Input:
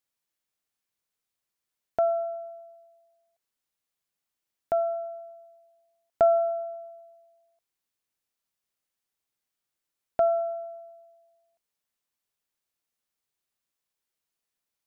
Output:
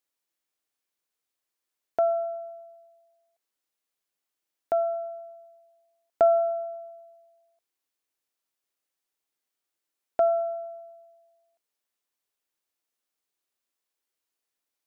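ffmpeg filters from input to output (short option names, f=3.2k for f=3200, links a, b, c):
-af "lowshelf=f=230:t=q:w=1.5:g=-6.5"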